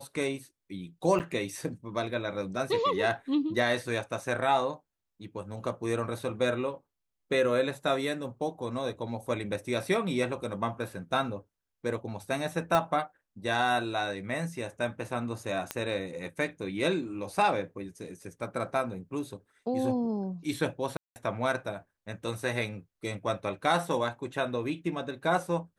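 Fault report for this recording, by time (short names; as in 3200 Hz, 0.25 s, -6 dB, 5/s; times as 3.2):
1.19–1.2 gap 8.5 ms
12.75 pop -13 dBFS
15.71 pop -14 dBFS
20.97–21.16 gap 0.189 s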